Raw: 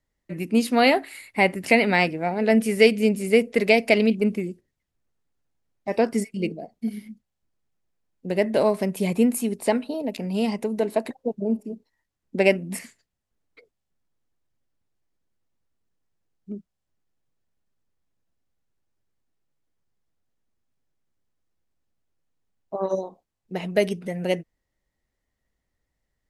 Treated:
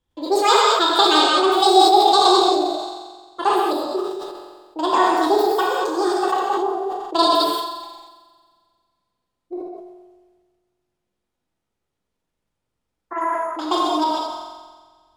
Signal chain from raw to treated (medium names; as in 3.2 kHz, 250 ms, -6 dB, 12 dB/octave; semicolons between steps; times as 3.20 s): low-pass 5.6 kHz 12 dB/octave; multi-head delay 77 ms, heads all three, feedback 73%, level -21 dB; gated-style reverb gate 430 ms flat, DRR -4.5 dB; speed mistake 45 rpm record played at 78 rpm; decay stretcher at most 42 dB/s; trim -1 dB